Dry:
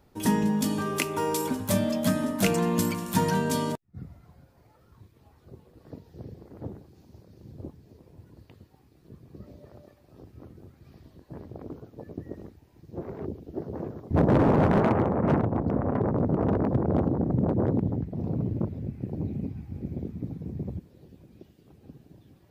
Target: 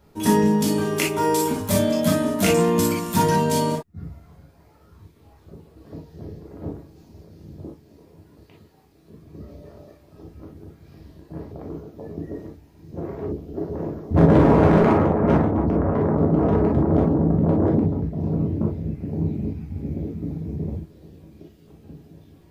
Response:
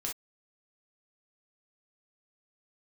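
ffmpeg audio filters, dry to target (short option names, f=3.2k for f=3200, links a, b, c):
-filter_complex "[0:a]asettb=1/sr,asplit=3[a][b][c];[a]atrim=end=7.604[d];[b]atrim=start=7.6:end=9.21,asetpts=PTS-STARTPTS,afade=t=in:d=0.004:c=qsin,afade=t=out:st=1.606:d=0.004:c=qsin,lowshelf=f=170:g=-8.5[e];[c]atrim=start=9.206[f];[d][e]acrossfade=d=0.004:c1=hsin:c2=qsin[g];[g][f]acrossfade=d=0.004:c1=qsin:c2=hsin[h];[1:a]atrim=start_sample=2205[i];[h][i]afir=irnorm=-1:irlink=0,volume=4dB"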